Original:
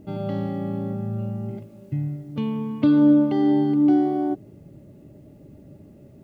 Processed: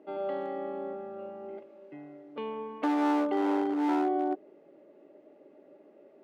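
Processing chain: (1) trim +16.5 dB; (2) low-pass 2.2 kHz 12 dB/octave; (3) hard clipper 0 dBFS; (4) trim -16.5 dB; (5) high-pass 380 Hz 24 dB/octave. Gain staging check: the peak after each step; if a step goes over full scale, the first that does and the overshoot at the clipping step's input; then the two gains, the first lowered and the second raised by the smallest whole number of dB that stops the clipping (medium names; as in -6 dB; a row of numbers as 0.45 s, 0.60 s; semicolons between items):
+8.0 dBFS, +8.0 dBFS, 0.0 dBFS, -16.5 dBFS, -18.5 dBFS; step 1, 8.0 dB; step 1 +8.5 dB, step 4 -8.5 dB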